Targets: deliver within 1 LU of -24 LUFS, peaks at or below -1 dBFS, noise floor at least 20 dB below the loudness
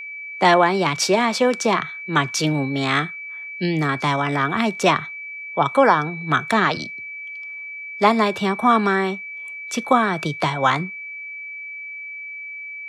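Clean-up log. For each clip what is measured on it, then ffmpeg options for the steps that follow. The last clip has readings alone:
steady tone 2300 Hz; tone level -31 dBFS; loudness -20.0 LUFS; peak -2.5 dBFS; loudness target -24.0 LUFS
-> -af "bandreject=f=2.3k:w=30"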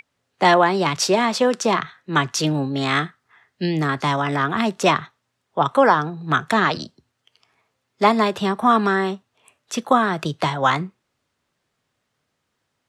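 steady tone none; loudness -20.0 LUFS; peak -3.0 dBFS; loudness target -24.0 LUFS
-> -af "volume=-4dB"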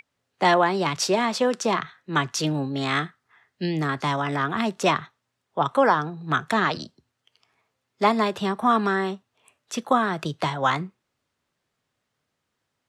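loudness -24.0 LUFS; peak -7.0 dBFS; noise floor -79 dBFS

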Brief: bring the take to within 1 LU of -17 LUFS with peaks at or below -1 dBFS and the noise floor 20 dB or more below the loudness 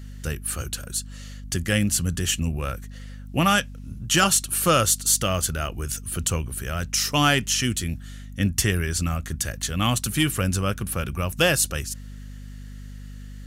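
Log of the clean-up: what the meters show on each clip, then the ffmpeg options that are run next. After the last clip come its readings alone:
hum 50 Hz; harmonics up to 250 Hz; hum level -36 dBFS; loudness -23.5 LUFS; peak -8.5 dBFS; loudness target -17.0 LUFS
-> -af "bandreject=f=50:t=h:w=6,bandreject=f=100:t=h:w=6,bandreject=f=150:t=h:w=6,bandreject=f=200:t=h:w=6,bandreject=f=250:t=h:w=6"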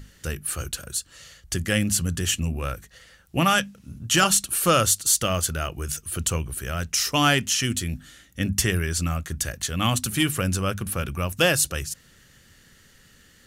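hum none; loudness -23.5 LUFS; peak -8.0 dBFS; loudness target -17.0 LUFS
-> -af "volume=6.5dB"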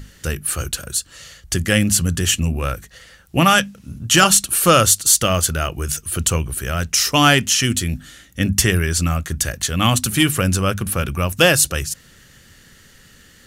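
loudness -17.0 LUFS; peak -1.5 dBFS; noise floor -49 dBFS

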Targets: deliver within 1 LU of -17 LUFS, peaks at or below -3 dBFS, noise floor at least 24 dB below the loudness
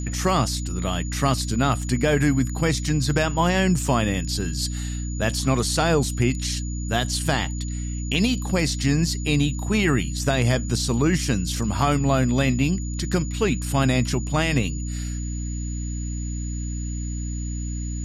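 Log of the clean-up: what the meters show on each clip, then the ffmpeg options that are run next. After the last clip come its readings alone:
hum 60 Hz; harmonics up to 300 Hz; hum level -26 dBFS; steady tone 6900 Hz; tone level -38 dBFS; loudness -23.5 LUFS; peak -7.5 dBFS; loudness target -17.0 LUFS
-> -af "bandreject=f=60:t=h:w=6,bandreject=f=120:t=h:w=6,bandreject=f=180:t=h:w=6,bandreject=f=240:t=h:w=6,bandreject=f=300:t=h:w=6"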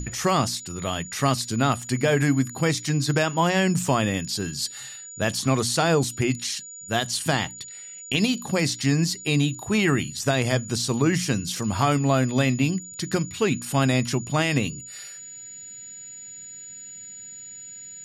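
hum none; steady tone 6900 Hz; tone level -38 dBFS
-> -af "bandreject=f=6.9k:w=30"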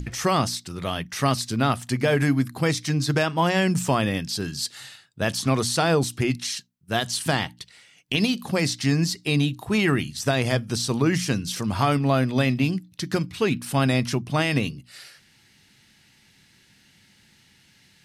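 steady tone none; loudness -24.0 LUFS; peak -8.0 dBFS; loudness target -17.0 LUFS
-> -af "volume=7dB,alimiter=limit=-3dB:level=0:latency=1"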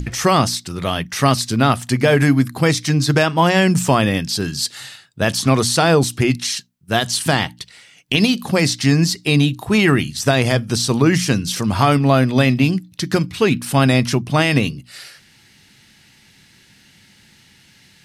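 loudness -17.0 LUFS; peak -3.0 dBFS; noise floor -52 dBFS

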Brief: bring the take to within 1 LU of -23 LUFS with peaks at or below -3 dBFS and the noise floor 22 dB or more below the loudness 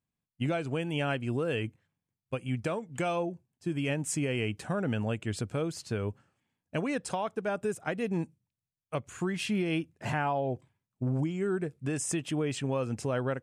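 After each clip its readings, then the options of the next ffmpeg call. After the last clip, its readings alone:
loudness -33.0 LUFS; peak -18.5 dBFS; loudness target -23.0 LUFS
-> -af "volume=10dB"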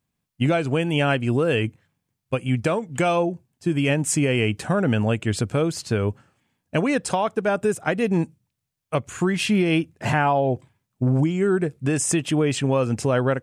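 loudness -23.0 LUFS; peak -8.5 dBFS; noise floor -80 dBFS

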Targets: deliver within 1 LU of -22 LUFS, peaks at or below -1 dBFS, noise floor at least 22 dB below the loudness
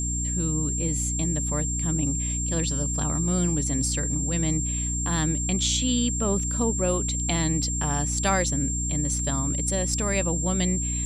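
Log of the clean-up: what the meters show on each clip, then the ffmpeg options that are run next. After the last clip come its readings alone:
hum 60 Hz; harmonics up to 300 Hz; hum level -27 dBFS; steady tone 7400 Hz; tone level -28 dBFS; loudness -24.5 LUFS; peak -9.0 dBFS; loudness target -22.0 LUFS
-> -af "bandreject=f=60:t=h:w=6,bandreject=f=120:t=h:w=6,bandreject=f=180:t=h:w=6,bandreject=f=240:t=h:w=6,bandreject=f=300:t=h:w=6"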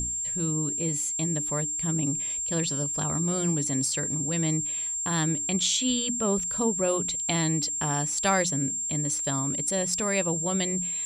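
hum none; steady tone 7400 Hz; tone level -28 dBFS
-> -af "bandreject=f=7.4k:w=30"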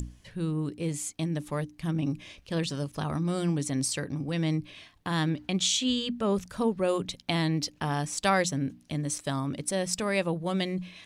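steady tone none; loudness -29.5 LUFS; peak -11.0 dBFS; loudness target -22.0 LUFS
-> -af "volume=7.5dB"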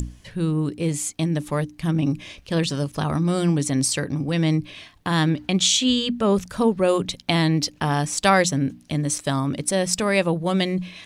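loudness -22.0 LUFS; peak -3.5 dBFS; noise floor -50 dBFS

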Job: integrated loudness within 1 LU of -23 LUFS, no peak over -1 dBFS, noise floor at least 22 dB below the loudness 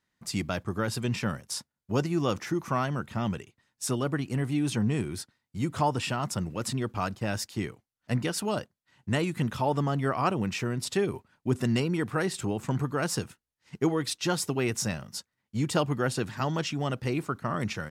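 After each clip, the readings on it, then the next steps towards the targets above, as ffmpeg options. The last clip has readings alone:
loudness -30.0 LUFS; peak -13.0 dBFS; loudness target -23.0 LUFS
-> -af "volume=7dB"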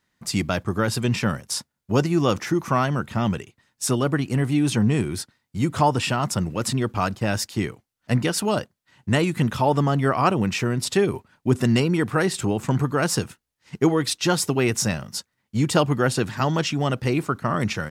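loudness -23.0 LUFS; peak -6.0 dBFS; noise floor -79 dBFS

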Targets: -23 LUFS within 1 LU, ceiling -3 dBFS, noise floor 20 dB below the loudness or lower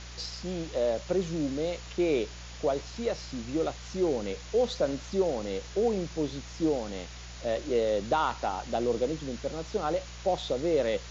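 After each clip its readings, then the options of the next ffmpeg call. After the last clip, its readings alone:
hum 60 Hz; harmonics up to 180 Hz; hum level -43 dBFS; noise floor -43 dBFS; noise floor target -51 dBFS; loudness -30.5 LUFS; peak -14.5 dBFS; loudness target -23.0 LUFS
-> -af "bandreject=f=60:t=h:w=4,bandreject=f=120:t=h:w=4,bandreject=f=180:t=h:w=4"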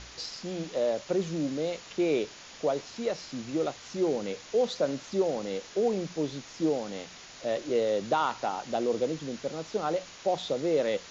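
hum none; noise floor -48 dBFS; noise floor target -51 dBFS
-> -af "afftdn=nr=6:nf=-48"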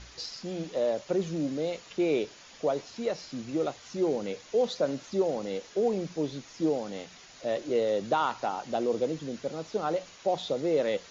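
noise floor -52 dBFS; loudness -31.0 LUFS; peak -15.0 dBFS; loudness target -23.0 LUFS
-> -af "volume=8dB"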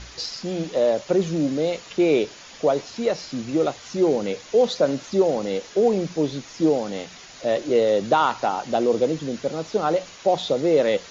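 loudness -23.0 LUFS; peak -7.0 dBFS; noise floor -44 dBFS

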